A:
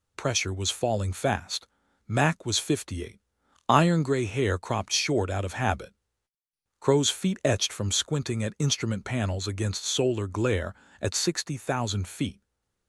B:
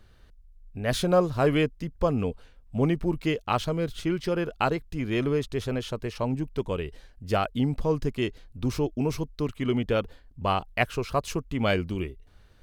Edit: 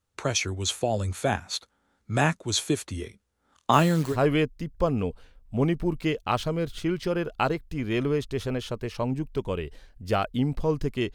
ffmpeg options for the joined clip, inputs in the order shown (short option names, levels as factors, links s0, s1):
-filter_complex "[0:a]asettb=1/sr,asplit=3[s0][s1][s2];[s0]atrim=end=3.734[s3];[s1]atrim=start=3.73:end=4.17,asetpts=PTS-STARTPTS,afade=t=in:d=0.004:c=qsin,afade=t=out:st=0.436:d=0.004:c=qsin,acrusher=bits=7:dc=4:mix=0:aa=0.000001[s4];[s2]atrim=start=4.166[s5];[s3][s4]acrossfade=d=0.004:c1=hsin:c2=qsin[s6];[s6][s5]acrossfade=d=0.004:c1=qsin:c2=hsin,apad=whole_dur=11.14,atrim=end=11.14,atrim=end=4.17,asetpts=PTS-STARTPTS[s7];[1:a]atrim=start=1.3:end=8.35,asetpts=PTS-STARTPTS[s8];[s7][s8]acrossfade=d=0.08:c1=tri:c2=tri"